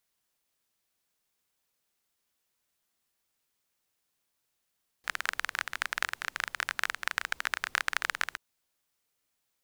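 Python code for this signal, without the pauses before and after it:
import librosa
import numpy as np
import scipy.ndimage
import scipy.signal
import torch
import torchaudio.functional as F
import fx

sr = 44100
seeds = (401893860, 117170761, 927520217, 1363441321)

y = fx.rain(sr, seeds[0], length_s=3.33, drops_per_s=21.0, hz=1600.0, bed_db=-25.0)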